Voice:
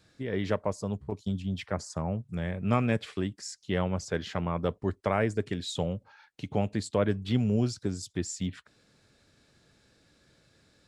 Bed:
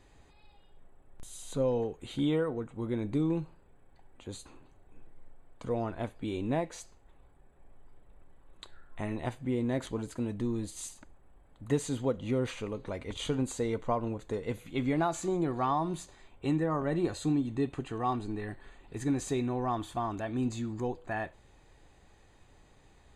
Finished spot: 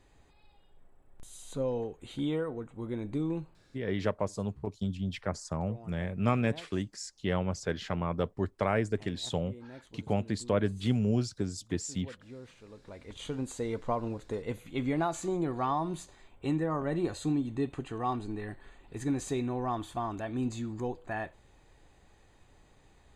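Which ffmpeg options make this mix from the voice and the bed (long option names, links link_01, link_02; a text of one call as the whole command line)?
ffmpeg -i stem1.wav -i stem2.wav -filter_complex "[0:a]adelay=3550,volume=-1.5dB[link_01];[1:a]volume=13dB,afade=type=out:start_time=3.38:duration=0.5:silence=0.199526,afade=type=in:start_time=12.61:duration=1.27:silence=0.158489[link_02];[link_01][link_02]amix=inputs=2:normalize=0" out.wav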